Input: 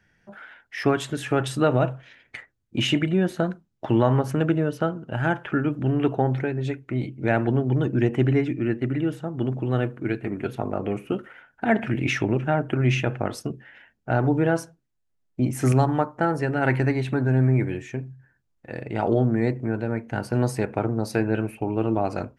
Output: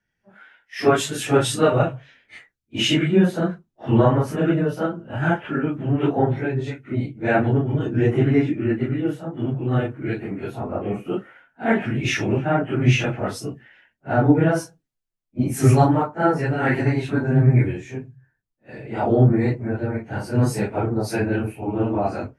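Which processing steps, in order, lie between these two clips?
phase randomisation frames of 100 ms; 0.96–1.55 s: treble shelf 4.1 kHz +5 dB; three bands expanded up and down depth 40%; trim +2.5 dB

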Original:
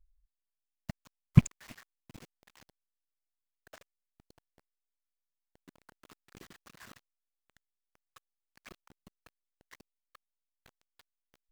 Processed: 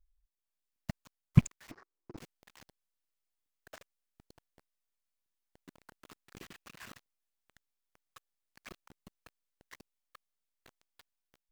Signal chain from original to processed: 6.40–6.90 s: peaking EQ 2.6 kHz +5.5 dB 0.47 oct; level rider gain up to 7 dB; 1.71–2.17 s: FFT filter 240 Hz 0 dB, 350 Hz +15 dB, 590 Hz +4 dB, 1.2 kHz +5 dB, 3.3 kHz -18 dB, 5.2 kHz -7 dB, 9.9 kHz -30 dB; crackling interface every 0.90 s, samples 64, zero, from 0.76 s; trim -5 dB

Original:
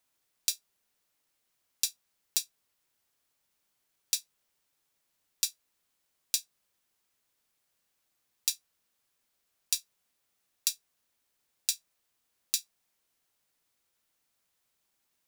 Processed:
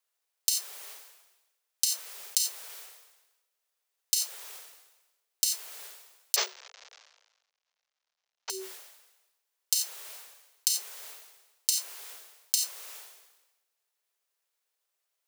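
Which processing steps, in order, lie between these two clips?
6.36–8.50 s: CVSD coder 32 kbps; transient shaper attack +7 dB, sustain -2 dB; frequency shift +380 Hz; decay stretcher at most 53 dB/s; trim -4.5 dB

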